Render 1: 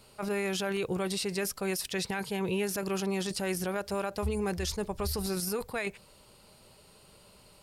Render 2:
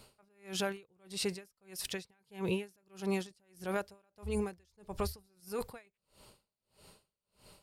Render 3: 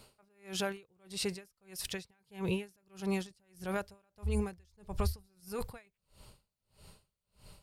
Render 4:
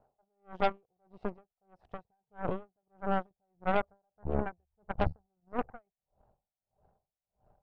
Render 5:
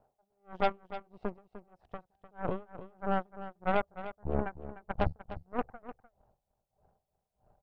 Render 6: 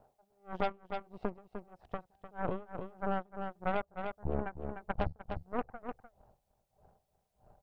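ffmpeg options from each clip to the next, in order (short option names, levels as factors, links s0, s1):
-af "aeval=exprs='val(0)*pow(10,-39*(0.5-0.5*cos(2*PI*1.6*n/s))/20)':c=same"
-af "asubboost=boost=3:cutoff=160"
-af "lowpass=f=740:t=q:w=8,aeval=exprs='0.15*(cos(1*acos(clip(val(0)/0.15,-1,1)))-cos(1*PI/2))+0.00944*(cos(3*acos(clip(val(0)/0.15,-1,1)))-cos(3*PI/2))+0.0335*(cos(4*acos(clip(val(0)/0.15,-1,1)))-cos(4*PI/2))+0.0133*(cos(7*acos(clip(val(0)/0.15,-1,1)))-cos(7*PI/2))+0.00422*(cos(8*acos(clip(val(0)/0.15,-1,1)))-cos(8*PI/2))':c=same"
-af "aecho=1:1:301:0.224"
-af "acompressor=threshold=0.0141:ratio=2.5,volume=1.78"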